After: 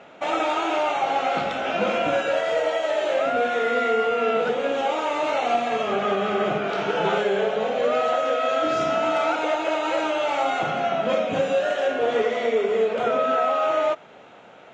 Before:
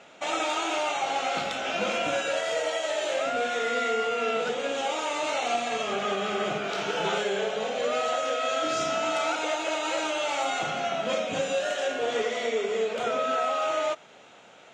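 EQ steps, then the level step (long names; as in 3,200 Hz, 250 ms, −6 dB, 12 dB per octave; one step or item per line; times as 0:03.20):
high-shelf EQ 3,100 Hz −11 dB
high-shelf EQ 6,900 Hz −10.5 dB
+6.5 dB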